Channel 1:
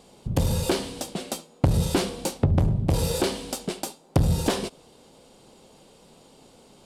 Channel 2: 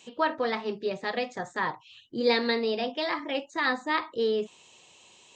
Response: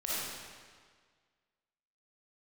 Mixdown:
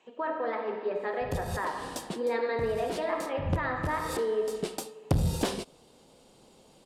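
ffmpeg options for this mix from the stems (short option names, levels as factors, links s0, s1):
-filter_complex "[0:a]adelay=950,volume=0.562[s0];[1:a]acrossover=split=310 2000:gain=0.224 1 0.0891[s1][s2][s3];[s1][s2][s3]amix=inputs=3:normalize=0,alimiter=limit=0.0708:level=0:latency=1:release=31,volume=0.668,asplit=3[s4][s5][s6];[s5]volume=0.531[s7];[s6]apad=whole_len=344336[s8];[s0][s8]sidechaincompress=threshold=0.00447:ratio=8:attack=7.4:release=150[s9];[2:a]atrim=start_sample=2205[s10];[s7][s10]afir=irnorm=-1:irlink=0[s11];[s9][s4][s11]amix=inputs=3:normalize=0"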